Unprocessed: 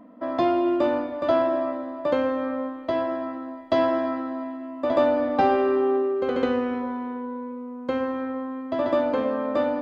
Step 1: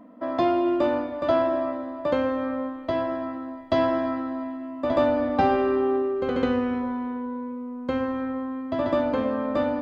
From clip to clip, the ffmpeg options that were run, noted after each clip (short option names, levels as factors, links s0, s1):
-af "asubboost=boost=2.5:cutoff=210"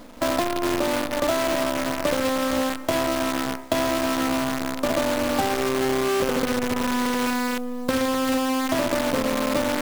-af "acompressor=threshold=0.0398:ratio=16,acrusher=bits=6:dc=4:mix=0:aa=0.000001,volume=2.51"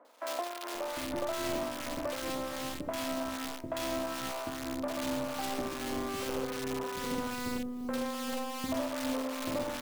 -filter_complex "[0:a]acrossover=split=1200[s0][s1];[s0]aeval=exprs='val(0)*(1-0.5/2+0.5/2*cos(2*PI*2.5*n/s))':c=same[s2];[s1]aeval=exprs='val(0)*(1-0.5/2-0.5/2*cos(2*PI*2.5*n/s))':c=same[s3];[s2][s3]amix=inputs=2:normalize=0,acrossover=split=420|1800[s4][s5][s6];[s6]adelay=50[s7];[s4]adelay=750[s8];[s8][s5][s7]amix=inputs=3:normalize=0,volume=0.398"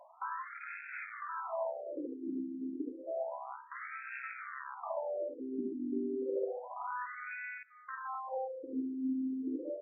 -af "alimiter=level_in=1.33:limit=0.0631:level=0:latency=1:release=242,volume=0.75,afftfilt=real='re*between(b*sr/1024,270*pow(1900/270,0.5+0.5*sin(2*PI*0.3*pts/sr))/1.41,270*pow(1900/270,0.5+0.5*sin(2*PI*0.3*pts/sr))*1.41)':imag='im*between(b*sr/1024,270*pow(1900/270,0.5+0.5*sin(2*PI*0.3*pts/sr))/1.41,270*pow(1900/270,0.5+0.5*sin(2*PI*0.3*pts/sr))*1.41)':win_size=1024:overlap=0.75,volume=1.78"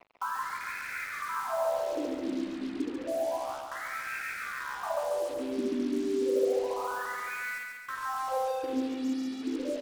-af "acrusher=bits=7:mix=0:aa=0.5,aecho=1:1:140|280|420|560|700|840|980:0.596|0.322|0.174|0.0938|0.0506|0.0274|0.0148,volume=1.88"